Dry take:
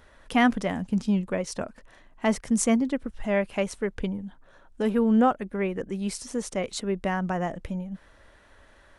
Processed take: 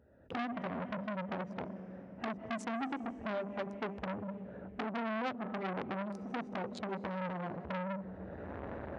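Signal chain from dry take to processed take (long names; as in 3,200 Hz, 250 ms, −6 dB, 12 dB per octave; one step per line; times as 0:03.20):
adaptive Wiener filter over 41 samples
camcorder AGC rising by 29 dB per second
high-pass filter 79 Hz 24 dB per octave
head-to-tape spacing loss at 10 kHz 24 dB
convolution reverb RT60 3.9 s, pre-delay 110 ms, DRR 16 dB
downward compressor 12 to 1, threshold −24 dBFS, peak gain reduction 9 dB
mains-hum notches 50/100/150/200/250/300/350/400 Hz
saturating transformer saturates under 2,000 Hz
level −2.5 dB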